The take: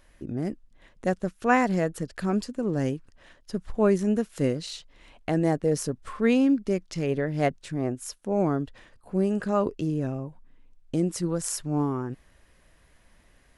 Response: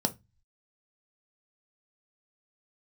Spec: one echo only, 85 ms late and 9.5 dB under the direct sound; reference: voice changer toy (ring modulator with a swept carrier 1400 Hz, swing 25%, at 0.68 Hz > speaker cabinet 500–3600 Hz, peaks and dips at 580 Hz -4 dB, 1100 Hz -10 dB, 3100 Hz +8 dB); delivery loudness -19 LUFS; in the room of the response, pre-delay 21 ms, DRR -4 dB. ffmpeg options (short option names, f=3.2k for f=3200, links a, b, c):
-filter_complex "[0:a]aecho=1:1:85:0.335,asplit=2[a][b];[1:a]atrim=start_sample=2205,adelay=21[c];[b][c]afir=irnorm=-1:irlink=0,volume=-2.5dB[d];[a][d]amix=inputs=2:normalize=0,aeval=exprs='val(0)*sin(2*PI*1400*n/s+1400*0.25/0.68*sin(2*PI*0.68*n/s))':c=same,highpass=500,equalizer=f=580:t=q:w=4:g=-4,equalizer=f=1.1k:t=q:w=4:g=-10,equalizer=f=3.1k:t=q:w=4:g=8,lowpass=f=3.6k:w=0.5412,lowpass=f=3.6k:w=1.3066,volume=-1dB"